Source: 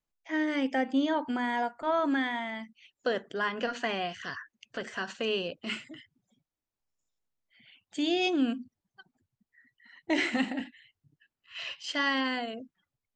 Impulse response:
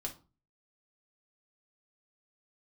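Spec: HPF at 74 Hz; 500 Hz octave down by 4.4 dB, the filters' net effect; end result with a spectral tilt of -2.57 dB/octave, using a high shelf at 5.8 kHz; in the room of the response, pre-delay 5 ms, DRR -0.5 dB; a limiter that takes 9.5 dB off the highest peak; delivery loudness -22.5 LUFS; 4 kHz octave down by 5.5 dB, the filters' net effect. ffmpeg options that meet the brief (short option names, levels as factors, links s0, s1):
-filter_complex "[0:a]highpass=74,equalizer=f=500:t=o:g=-6,equalizer=f=4000:t=o:g=-7,highshelf=f=5800:g=-3.5,alimiter=level_in=1.5:limit=0.0631:level=0:latency=1,volume=0.668,asplit=2[s0][s1];[1:a]atrim=start_sample=2205,adelay=5[s2];[s1][s2]afir=irnorm=-1:irlink=0,volume=1.12[s3];[s0][s3]amix=inputs=2:normalize=0,volume=3.76"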